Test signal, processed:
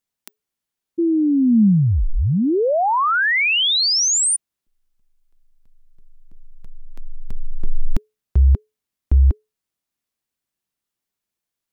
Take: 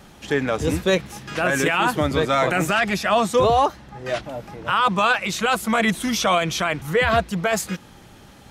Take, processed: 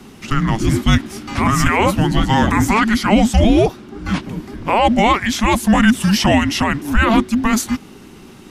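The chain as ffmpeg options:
-af "equalizer=f=220:w=2.2:g=5.5,afreqshift=-430,volume=5dB"

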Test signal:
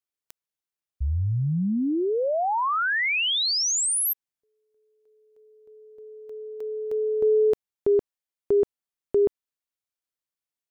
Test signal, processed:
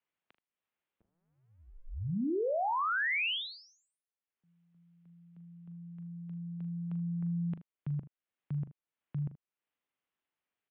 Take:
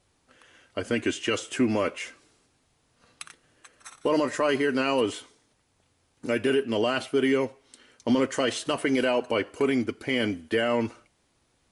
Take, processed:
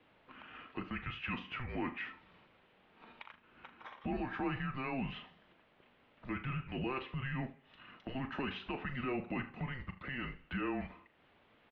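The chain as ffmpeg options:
-af "alimiter=limit=-18.5dB:level=0:latency=1:release=10,acompressor=threshold=-48dB:ratio=2:attack=0.22:release=244:knee=1:detection=rms,aecho=1:1:40|78:0.266|0.141,highpass=f=400:t=q:w=0.5412,highpass=f=400:t=q:w=1.307,lowpass=f=3.4k:t=q:w=0.5176,lowpass=f=3.4k:t=q:w=0.7071,lowpass=f=3.4k:t=q:w=1.932,afreqshift=-260,volume=6dB"

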